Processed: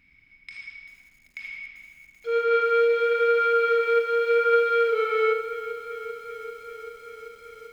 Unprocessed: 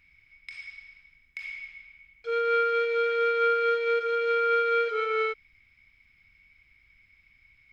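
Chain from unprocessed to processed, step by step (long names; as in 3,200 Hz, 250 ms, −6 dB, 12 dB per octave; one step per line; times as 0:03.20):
parametric band 240 Hz +11.5 dB 1.2 octaves
on a send: tape delay 77 ms, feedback 51%, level −4 dB, low-pass 2,300 Hz
on the sum: feedback echo at a low word length 389 ms, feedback 80%, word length 8 bits, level −15 dB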